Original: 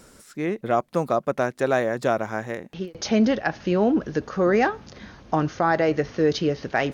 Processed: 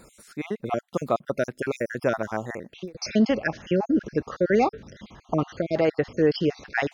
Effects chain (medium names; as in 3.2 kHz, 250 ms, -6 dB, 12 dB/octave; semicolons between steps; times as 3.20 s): random holes in the spectrogram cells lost 45%